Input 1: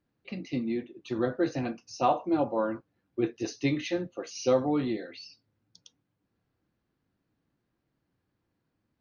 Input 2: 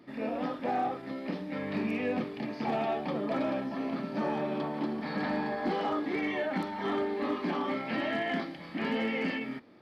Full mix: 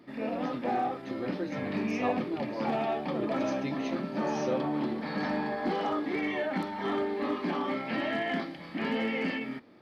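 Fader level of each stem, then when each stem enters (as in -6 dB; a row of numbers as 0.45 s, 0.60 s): -8.5 dB, +0.5 dB; 0.00 s, 0.00 s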